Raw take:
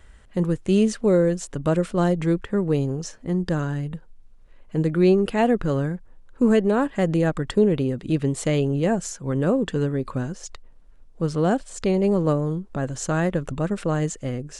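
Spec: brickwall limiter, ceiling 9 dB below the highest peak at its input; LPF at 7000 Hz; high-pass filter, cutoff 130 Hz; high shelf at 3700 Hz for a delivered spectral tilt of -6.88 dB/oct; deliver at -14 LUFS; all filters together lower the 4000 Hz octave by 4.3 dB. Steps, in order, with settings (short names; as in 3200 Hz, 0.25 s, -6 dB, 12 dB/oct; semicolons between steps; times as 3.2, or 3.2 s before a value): HPF 130 Hz; LPF 7000 Hz; high shelf 3700 Hz -3.5 dB; bell 4000 Hz -3.5 dB; gain +13.5 dB; limiter -4 dBFS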